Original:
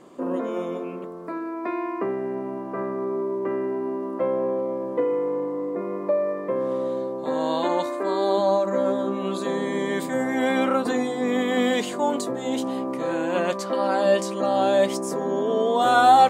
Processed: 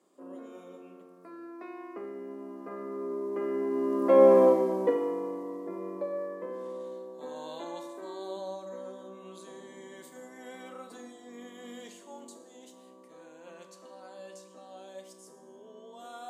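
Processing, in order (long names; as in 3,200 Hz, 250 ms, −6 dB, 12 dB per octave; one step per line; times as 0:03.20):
source passing by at 0:04.39, 9 m/s, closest 1.7 metres
elliptic high-pass filter 160 Hz
bass and treble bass −2 dB, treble +10 dB
four-comb reverb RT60 0.9 s, combs from 26 ms, DRR 7.5 dB
level +7.5 dB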